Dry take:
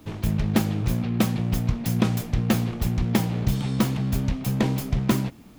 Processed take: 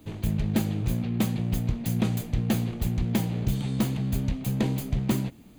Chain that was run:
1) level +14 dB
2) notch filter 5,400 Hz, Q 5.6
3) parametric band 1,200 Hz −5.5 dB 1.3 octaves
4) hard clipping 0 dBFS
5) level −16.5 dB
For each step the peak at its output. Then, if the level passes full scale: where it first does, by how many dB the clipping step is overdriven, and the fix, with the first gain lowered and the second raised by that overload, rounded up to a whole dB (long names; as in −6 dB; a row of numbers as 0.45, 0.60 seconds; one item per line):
+7.5, +7.0, +6.5, 0.0, −16.5 dBFS
step 1, 6.5 dB
step 1 +7 dB, step 5 −9.5 dB